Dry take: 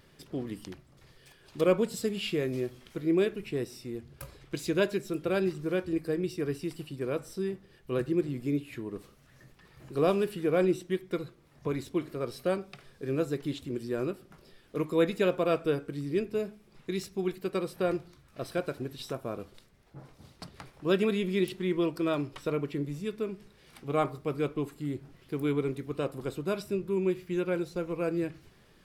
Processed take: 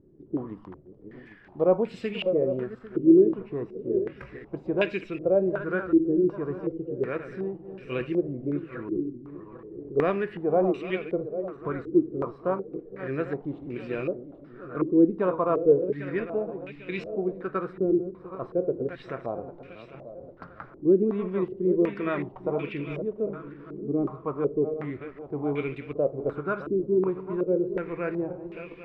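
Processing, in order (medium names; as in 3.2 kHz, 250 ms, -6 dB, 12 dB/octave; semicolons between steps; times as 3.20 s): backward echo that repeats 399 ms, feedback 64%, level -10.5 dB; step-sequenced low-pass 2.7 Hz 340–2500 Hz; trim -1 dB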